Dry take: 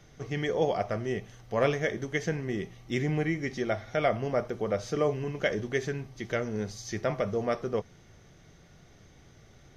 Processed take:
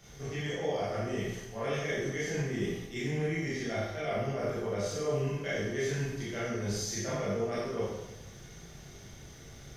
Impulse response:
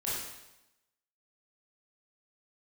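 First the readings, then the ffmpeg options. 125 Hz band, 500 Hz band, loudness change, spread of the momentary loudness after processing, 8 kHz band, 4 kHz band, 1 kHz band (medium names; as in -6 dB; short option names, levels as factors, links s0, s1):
-1.0 dB, -3.5 dB, -3.0 dB, 17 LU, +5.5 dB, +0.5 dB, -5.0 dB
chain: -filter_complex "[0:a]highshelf=f=4600:g=10.5,areverse,acompressor=threshold=0.0178:ratio=6,areverse[s0];[1:a]atrim=start_sample=2205[s1];[s0][s1]afir=irnorm=-1:irlink=0"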